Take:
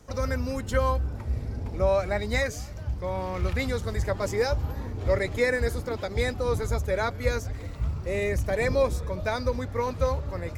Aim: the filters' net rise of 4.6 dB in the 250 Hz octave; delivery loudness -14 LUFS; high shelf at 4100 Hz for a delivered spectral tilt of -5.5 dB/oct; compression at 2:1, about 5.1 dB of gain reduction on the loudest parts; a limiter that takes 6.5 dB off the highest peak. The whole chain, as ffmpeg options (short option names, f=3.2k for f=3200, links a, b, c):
-af "equalizer=f=250:t=o:g=5.5,highshelf=f=4.1k:g=-8,acompressor=threshold=-27dB:ratio=2,volume=18dB,alimiter=limit=-4dB:level=0:latency=1"